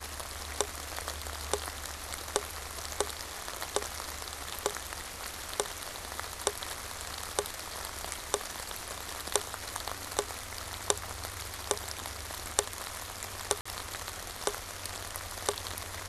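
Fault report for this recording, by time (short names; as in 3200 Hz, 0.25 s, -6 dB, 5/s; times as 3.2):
13.61–13.65 gap 45 ms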